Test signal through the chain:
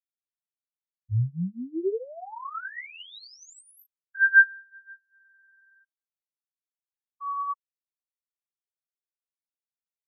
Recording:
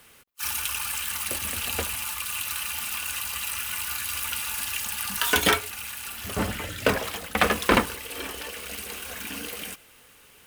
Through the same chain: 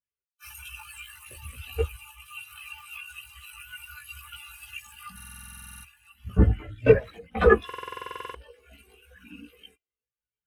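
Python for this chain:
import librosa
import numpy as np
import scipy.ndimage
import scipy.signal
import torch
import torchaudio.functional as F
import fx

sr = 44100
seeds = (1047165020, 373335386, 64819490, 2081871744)

y = fx.cheby_harmonics(x, sr, harmonics=(5,), levels_db=(-8,), full_scale_db=-5.5)
y = fx.chorus_voices(y, sr, voices=4, hz=0.47, base_ms=17, depth_ms=1.5, mix_pct=50)
y = fx.buffer_glitch(y, sr, at_s=(5.15, 7.65), block=2048, repeats=14)
y = fx.spectral_expand(y, sr, expansion=2.5)
y = y * librosa.db_to_amplitude(3.0)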